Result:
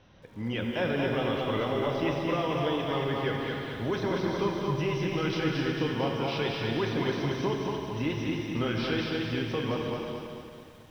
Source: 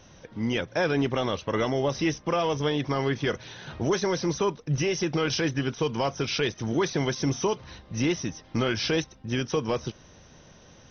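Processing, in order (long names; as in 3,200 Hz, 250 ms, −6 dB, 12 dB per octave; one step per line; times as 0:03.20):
low-pass filter 4,100 Hz 24 dB per octave
convolution reverb, pre-delay 3 ms, DRR 1.5 dB
feedback echo at a low word length 223 ms, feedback 55%, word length 9 bits, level −3.5 dB
level −6 dB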